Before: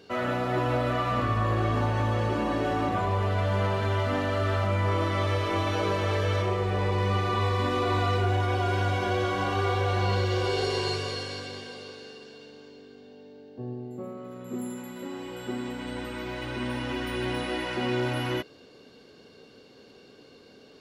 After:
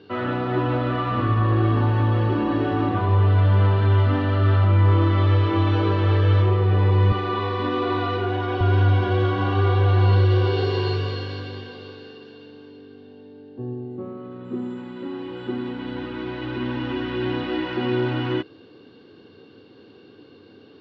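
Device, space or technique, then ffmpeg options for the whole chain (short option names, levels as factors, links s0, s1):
guitar cabinet: -filter_complex "[0:a]highpass=79,equalizer=f=99:t=q:w=4:g=10,equalizer=f=320:t=q:w=4:g=8,equalizer=f=620:t=q:w=4:g=-7,equalizer=f=2200:t=q:w=4:g=-6,lowpass=f=3800:w=0.5412,lowpass=f=3800:w=1.3066,asettb=1/sr,asplit=3[s0][s1][s2];[s0]atrim=end=7.124[s3];[s1]atrim=start=7.12:end=8.61,asetpts=PTS-STARTPTS,afade=t=in:d=0.004:c=qsin,afade=t=out:st=1.486:d=0.004:c=qsin,highpass=210[s4];[s2]atrim=start=8.606[s5];[s3][s4]acrossfade=d=0.004:c1=hsin:c2=qsin[s6];[s6][s5]acrossfade=d=0.004:c1=qsin:c2=hsin,volume=1.41"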